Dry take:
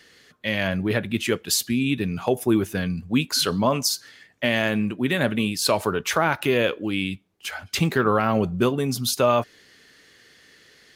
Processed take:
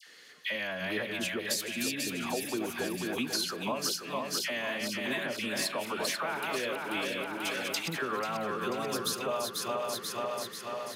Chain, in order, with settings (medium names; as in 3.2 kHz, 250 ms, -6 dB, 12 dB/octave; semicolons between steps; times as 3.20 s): backward echo that repeats 244 ms, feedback 72%, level -5 dB; high-pass 150 Hz 12 dB/octave; bass shelf 330 Hz -11.5 dB; compression 6:1, threshold -30 dBFS, peak gain reduction 13 dB; phase dispersion lows, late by 69 ms, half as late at 1.3 kHz